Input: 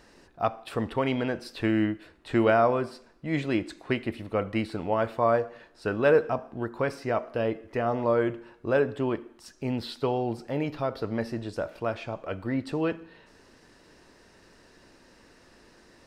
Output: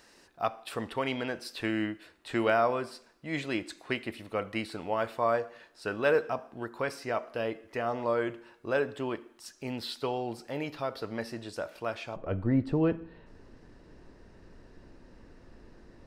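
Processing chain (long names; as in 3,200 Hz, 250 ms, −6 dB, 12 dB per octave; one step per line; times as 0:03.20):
spectral tilt +2 dB per octave, from 0:12.15 −3 dB per octave
level −3 dB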